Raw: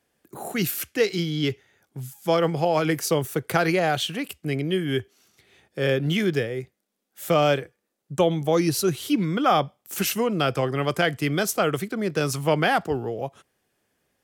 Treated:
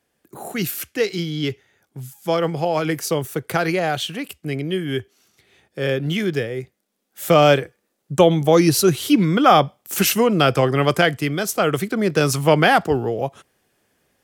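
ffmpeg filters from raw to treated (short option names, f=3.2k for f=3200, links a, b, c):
-af "volume=13.5dB,afade=t=in:st=6.29:d=1.23:silence=0.501187,afade=t=out:st=10.9:d=0.48:silence=0.446684,afade=t=in:st=11.38:d=0.55:silence=0.473151"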